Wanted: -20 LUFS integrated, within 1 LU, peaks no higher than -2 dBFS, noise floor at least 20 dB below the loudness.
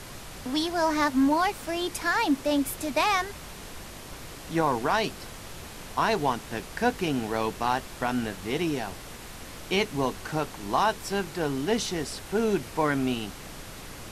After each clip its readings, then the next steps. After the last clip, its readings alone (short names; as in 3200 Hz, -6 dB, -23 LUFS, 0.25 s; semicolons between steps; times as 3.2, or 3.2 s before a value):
noise floor -42 dBFS; noise floor target -48 dBFS; loudness -27.5 LUFS; peak -12.0 dBFS; loudness target -20.0 LUFS
-> noise print and reduce 6 dB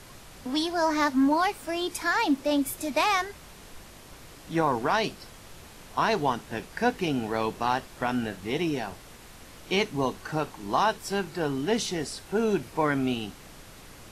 noise floor -48 dBFS; loudness -27.5 LUFS; peak -12.0 dBFS; loudness target -20.0 LUFS
-> gain +7.5 dB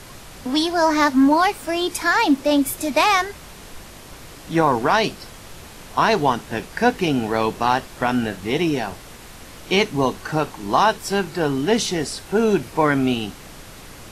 loudness -20.0 LUFS; peak -4.5 dBFS; noise floor -41 dBFS